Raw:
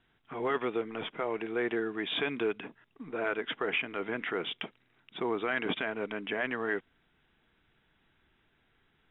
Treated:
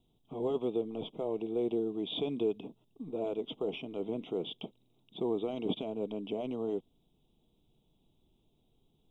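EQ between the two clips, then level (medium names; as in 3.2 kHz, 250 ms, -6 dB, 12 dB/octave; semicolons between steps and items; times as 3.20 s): Butterworth band-stop 1.7 kHz, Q 0.51; tone controls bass +4 dB, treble +5 dB; peaking EQ 77 Hz -6.5 dB 0.77 oct; 0.0 dB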